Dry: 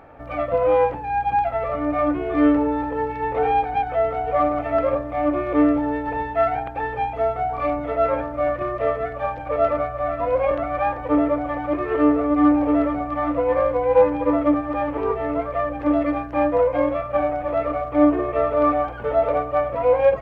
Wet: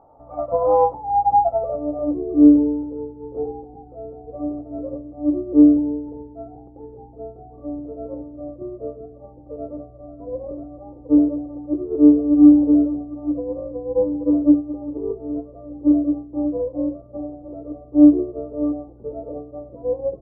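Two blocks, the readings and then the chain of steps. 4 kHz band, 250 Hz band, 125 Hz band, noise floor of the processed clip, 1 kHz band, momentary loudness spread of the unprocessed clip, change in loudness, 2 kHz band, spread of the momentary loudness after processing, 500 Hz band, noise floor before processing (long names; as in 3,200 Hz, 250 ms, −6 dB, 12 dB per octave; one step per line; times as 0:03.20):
can't be measured, +5.5 dB, −5.0 dB, −44 dBFS, −4.0 dB, 7 LU, +2.5 dB, below −35 dB, 22 LU, −5.5 dB, −32 dBFS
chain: low-pass filter sweep 900 Hz → 350 Hz, 0:01.15–0:02.45
Savitzky-Golay smoothing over 65 samples
expander for the loud parts 1.5 to 1, over −29 dBFS
level +1 dB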